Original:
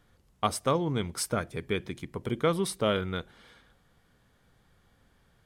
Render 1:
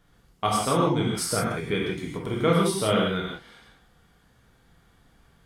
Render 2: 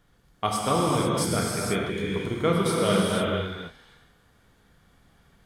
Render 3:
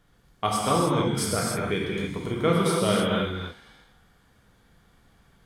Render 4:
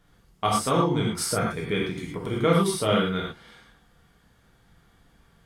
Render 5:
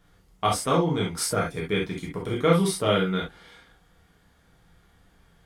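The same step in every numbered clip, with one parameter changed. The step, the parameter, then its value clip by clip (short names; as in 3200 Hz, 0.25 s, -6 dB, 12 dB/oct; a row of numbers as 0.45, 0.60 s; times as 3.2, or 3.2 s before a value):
non-linear reverb, gate: 200, 520, 340, 140, 90 ms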